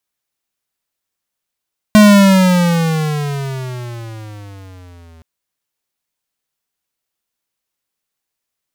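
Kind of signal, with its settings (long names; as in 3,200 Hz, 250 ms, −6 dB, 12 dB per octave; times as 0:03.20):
pitch glide with a swell square, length 3.27 s, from 214 Hz, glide −17 semitones, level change −37 dB, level −4.5 dB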